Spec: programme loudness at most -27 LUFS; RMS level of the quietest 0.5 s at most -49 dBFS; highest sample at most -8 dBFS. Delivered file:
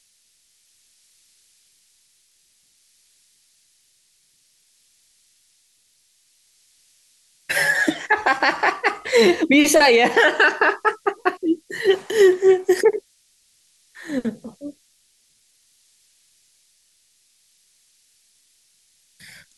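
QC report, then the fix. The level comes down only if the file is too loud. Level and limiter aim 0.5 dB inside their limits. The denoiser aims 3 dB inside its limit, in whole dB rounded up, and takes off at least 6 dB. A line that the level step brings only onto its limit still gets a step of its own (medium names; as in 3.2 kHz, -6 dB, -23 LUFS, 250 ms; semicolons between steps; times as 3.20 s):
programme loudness -18.0 LUFS: fail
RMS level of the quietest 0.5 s -62 dBFS: pass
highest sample -6.0 dBFS: fail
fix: trim -9.5 dB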